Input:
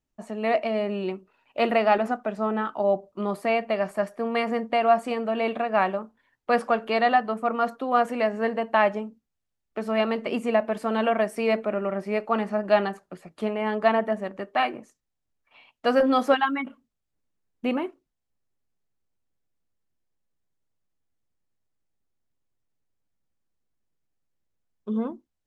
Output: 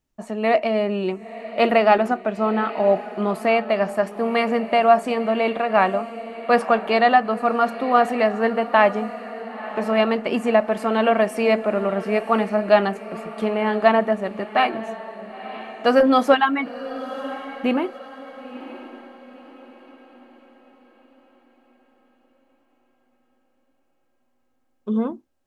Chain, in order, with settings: echo that smears into a reverb 979 ms, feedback 44%, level -14 dB; trim +5 dB

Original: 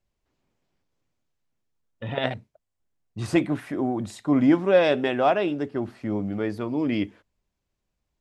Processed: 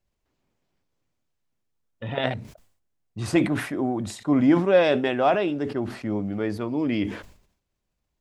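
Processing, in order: decay stretcher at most 95 dB/s

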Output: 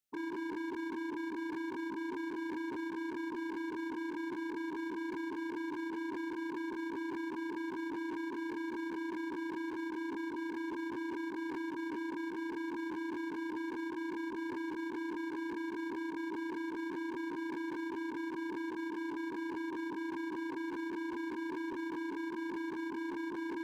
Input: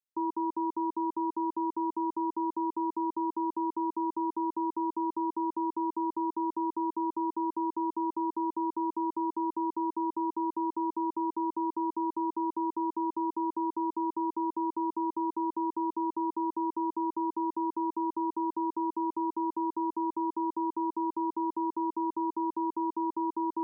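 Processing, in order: every event in the spectrogram widened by 60 ms; peaking EQ 1 kHz -9 dB 0.5 oct; peak limiter -31 dBFS, peak gain reduction 6.5 dB; wavefolder -35.5 dBFS; trim +1 dB

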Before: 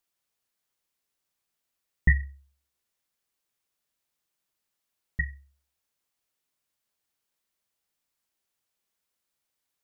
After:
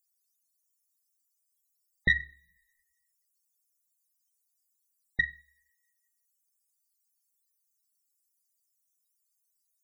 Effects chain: tracing distortion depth 0.03 ms; tone controls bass -14 dB, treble +7 dB; peak limiter -19.5 dBFS, peak gain reduction 6.5 dB; peaking EQ 77 Hz -5.5 dB 0.8 oct; two-slope reverb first 0.52 s, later 2 s, from -21 dB, DRR 19 dB; loudest bins only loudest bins 64; trim +6.5 dB

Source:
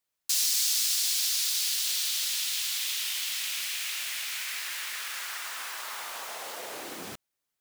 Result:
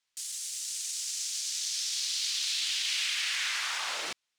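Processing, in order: tilt shelf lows -9 dB, about 740 Hz; peak limiter -19.5 dBFS, peak gain reduction 15.5 dB; distance through air 280 m; speed mistake 45 rpm record played at 78 rpm; trim +6 dB

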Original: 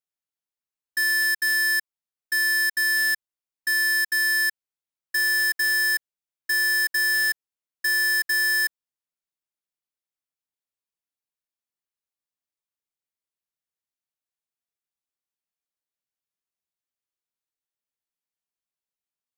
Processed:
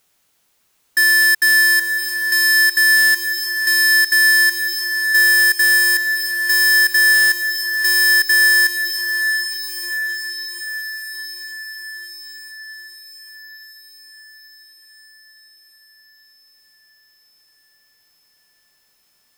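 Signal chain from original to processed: echo that smears into a reverb 713 ms, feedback 53%, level -10 dB; power-law waveshaper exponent 0.7; trim +7.5 dB

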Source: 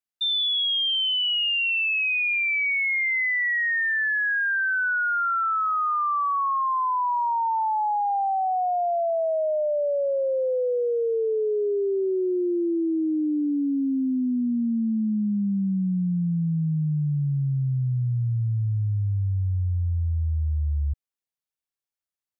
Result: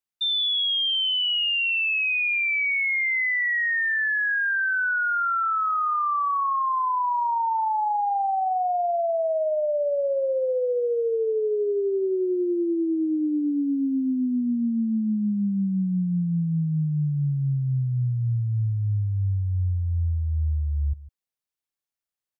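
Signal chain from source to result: 5.93–6.87 s: high-pass 130 Hz 24 dB/octave; delay 152 ms -17.5 dB

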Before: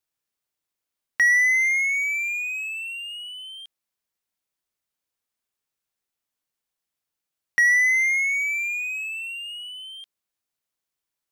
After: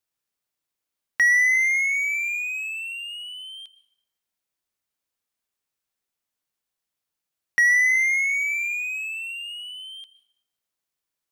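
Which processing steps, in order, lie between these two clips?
plate-style reverb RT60 0.8 s, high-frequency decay 0.8×, pre-delay 105 ms, DRR 16 dB

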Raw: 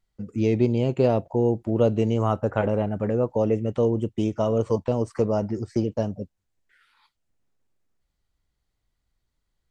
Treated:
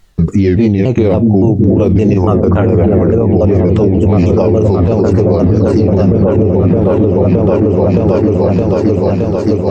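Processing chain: sawtooth pitch modulation -4.5 st, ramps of 284 ms; on a send: delay with an opening low-pass 618 ms, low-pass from 200 Hz, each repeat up 1 oct, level 0 dB; on the sum: compression, threshold -26 dBFS, peak gain reduction 11.5 dB; loudness maximiser +28 dB; trim -1 dB

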